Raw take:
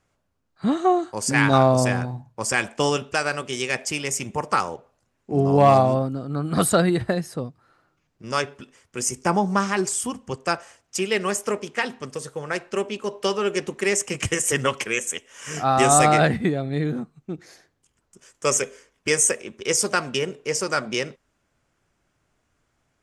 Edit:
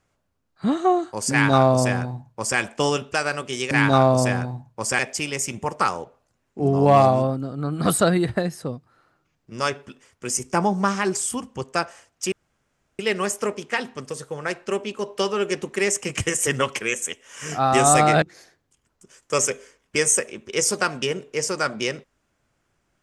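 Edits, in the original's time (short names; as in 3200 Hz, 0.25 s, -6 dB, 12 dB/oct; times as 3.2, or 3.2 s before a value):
1.31–2.59 copy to 3.71
11.04 insert room tone 0.67 s
16.27–17.34 cut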